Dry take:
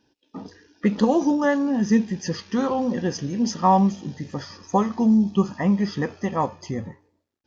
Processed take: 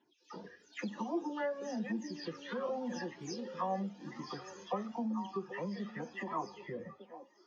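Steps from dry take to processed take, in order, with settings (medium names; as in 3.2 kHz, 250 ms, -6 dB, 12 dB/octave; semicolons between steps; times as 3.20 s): delay that grows with frequency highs early, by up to 260 ms; compression 2.5:1, threshold -32 dBFS, peak gain reduction 12.5 dB; band-pass 240–5000 Hz; repeats whose band climbs or falls 779 ms, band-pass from 380 Hz, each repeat 1.4 oct, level -7.5 dB; Shepard-style flanger rising 0.95 Hz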